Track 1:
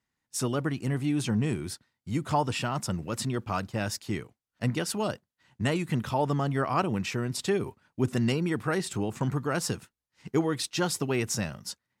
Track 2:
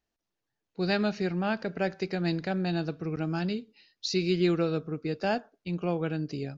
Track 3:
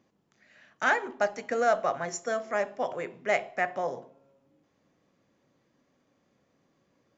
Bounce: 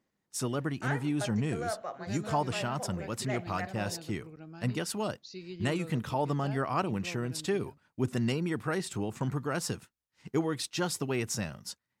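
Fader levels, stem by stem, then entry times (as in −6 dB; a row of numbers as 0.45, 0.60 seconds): −3.5, −16.5, −11.0 decibels; 0.00, 1.20, 0.00 seconds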